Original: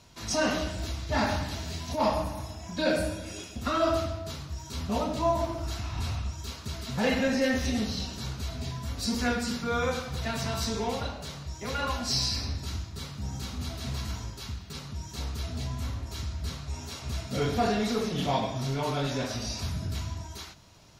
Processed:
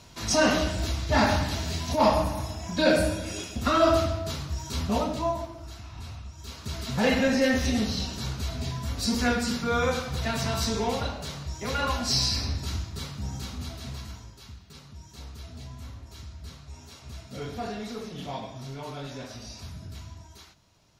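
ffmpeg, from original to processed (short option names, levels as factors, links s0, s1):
-af "volume=6.31,afade=t=out:st=4.76:d=0.73:silence=0.223872,afade=t=in:st=6.33:d=0.47:silence=0.281838,afade=t=out:st=12.94:d=1.3:silence=0.281838"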